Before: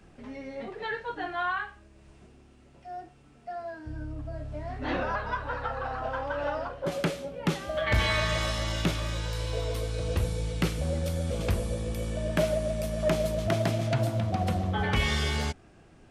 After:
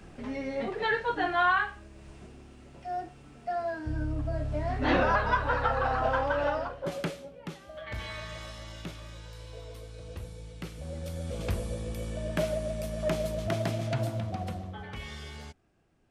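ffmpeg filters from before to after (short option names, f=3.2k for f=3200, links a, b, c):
-af "volume=15dB,afade=t=out:st=6.11:d=0.67:silence=0.421697,afade=t=out:st=6.78:d=0.71:silence=0.281838,afade=t=in:st=10.67:d=0.85:silence=0.334965,afade=t=out:st=14.07:d=0.77:silence=0.281838"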